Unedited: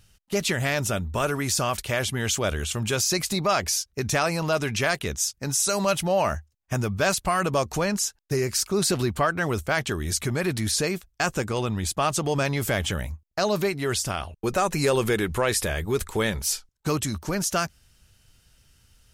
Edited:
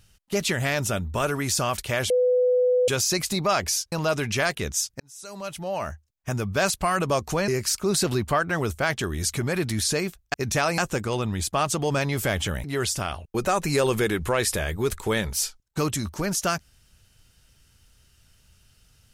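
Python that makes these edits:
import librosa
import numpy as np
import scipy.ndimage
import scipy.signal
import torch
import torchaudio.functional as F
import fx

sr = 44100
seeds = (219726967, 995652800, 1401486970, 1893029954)

y = fx.edit(x, sr, fx.bleep(start_s=2.1, length_s=0.78, hz=499.0, db=-17.0),
    fx.move(start_s=3.92, length_s=0.44, to_s=11.22),
    fx.fade_in_span(start_s=5.44, length_s=1.64),
    fx.cut(start_s=7.92, length_s=0.44),
    fx.cut(start_s=13.08, length_s=0.65), tone=tone)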